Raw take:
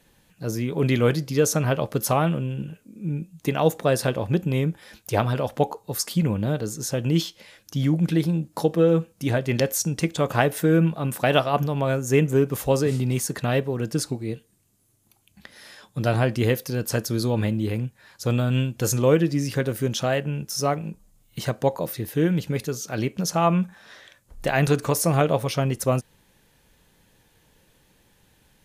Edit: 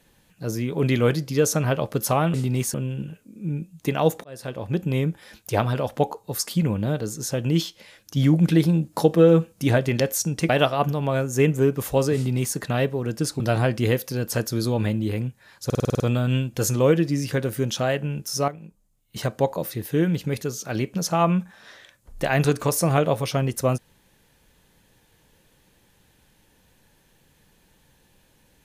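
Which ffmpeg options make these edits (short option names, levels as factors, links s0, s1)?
-filter_complex "[0:a]asplit=17[s0][s1][s2][s3][s4][s5][s6][s7][s8][s9][s10][s11][s12][s13][s14][s15][s16];[s0]atrim=end=2.342[s17];[s1]atrim=start=12.898:end=13.302[s18];[s2]atrim=start=2.338:end=3.84,asetpts=PTS-STARTPTS,afade=t=out:st=1.498:d=0.004:c=hsin[s19];[s3]atrim=start=3.84:end=7.772,asetpts=PTS-STARTPTS,afade=t=in:d=0.67[s20];[s4]atrim=start=7.768:end=9.492,asetpts=PTS-STARTPTS,volume=1.5[s21];[s5]atrim=start=9.488:end=10.092[s22];[s6]atrim=start=11.228:end=14.142[s23];[s7]atrim=start=15.978:end=18.282[s24];[s8]atrim=start=18.228:end=18.282[s25];[s9]atrim=start=18.228:end=18.282[s26];[s10]atrim=start=18.228:end=18.282[s27];[s11]atrim=start=18.228:end=18.282[s28];[s12]atrim=start=18.228:end=18.282[s29];[s13]atrim=start=18.228:end=18.282[s30];[s14]atrim=start=18.228:end=20.712[s31];[s15]atrim=start=20.708:end=21.392,asetpts=PTS-STARTPTS,volume=0.316[s32];[s16]atrim=start=21.388[s33];[s17][s18]acrossfade=d=0.004:c1=hsin:c2=hsin[s34];[s19][s20]concat=n=2:v=0:a=1[s35];[s34][s35]acrossfade=d=0.004:c1=hsin:c2=hsin[s36];[s36][s21]acrossfade=d=0.004:c1=hsin:c2=hsin[s37];[s37][s22]acrossfade=d=0.004:c1=hsin:c2=hsin[s38];[s38][s23]acrossfade=d=0.004:c1=hsin:c2=hsin[s39];[s39][s24]acrossfade=d=0.004:c1=hsin:c2=hsin[s40];[s40][s25]acrossfade=d=0.004:c1=hsin:c2=hsin[s41];[s41][s26]acrossfade=d=0.004:c1=hsin:c2=hsin[s42];[s42][s27]acrossfade=d=0.004:c1=hsin:c2=hsin[s43];[s43][s28]acrossfade=d=0.004:c1=hsin:c2=hsin[s44];[s44][s29]acrossfade=d=0.004:c1=hsin:c2=hsin[s45];[s45][s30]acrossfade=d=0.004:c1=hsin:c2=hsin[s46];[s46][s31]acrossfade=d=0.004:c1=hsin:c2=hsin[s47];[s47][s32]acrossfade=d=0.004:c1=hsin:c2=hsin[s48];[s48][s33]acrossfade=d=0.004:c1=hsin:c2=hsin"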